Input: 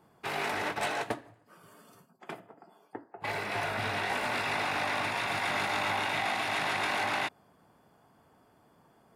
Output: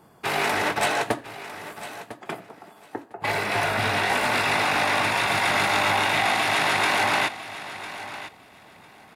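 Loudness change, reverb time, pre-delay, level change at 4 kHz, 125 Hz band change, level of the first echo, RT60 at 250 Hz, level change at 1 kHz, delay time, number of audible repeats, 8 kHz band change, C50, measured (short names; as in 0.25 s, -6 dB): +9.0 dB, none, none, +9.5 dB, +8.5 dB, -14.0 dB, none, +8.5 dB, 1.002 s, 2, +11.5 dB, none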